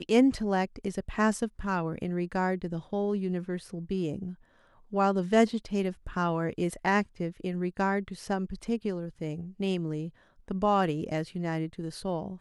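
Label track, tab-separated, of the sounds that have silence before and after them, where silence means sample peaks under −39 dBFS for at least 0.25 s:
4.930000	10.090000	sound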